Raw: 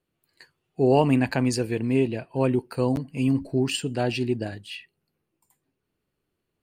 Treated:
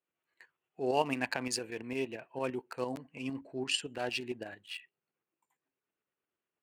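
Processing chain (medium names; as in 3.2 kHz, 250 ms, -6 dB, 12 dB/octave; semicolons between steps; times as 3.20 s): local Wiener filter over 9 samples; high-pass 1.2 kHz 6 dB/octave; tremolo saw up 8.8 Hz, depth 50%; 3.01–3.95 s: low-pass 9.1 kHz 12 dB/octave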